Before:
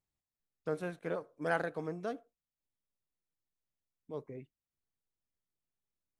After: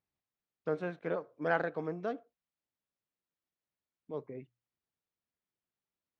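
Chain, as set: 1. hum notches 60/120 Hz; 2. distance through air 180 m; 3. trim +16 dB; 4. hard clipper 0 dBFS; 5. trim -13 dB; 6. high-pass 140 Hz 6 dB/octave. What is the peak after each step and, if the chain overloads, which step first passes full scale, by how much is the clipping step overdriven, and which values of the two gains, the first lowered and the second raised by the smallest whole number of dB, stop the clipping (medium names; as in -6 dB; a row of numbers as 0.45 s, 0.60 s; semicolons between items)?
-18.0 dBFS, -19.0 dBFS, -3.0 dBFS, -3.0 dBFS, -16.0 dBFS, -15.5 dBFS; nothing clips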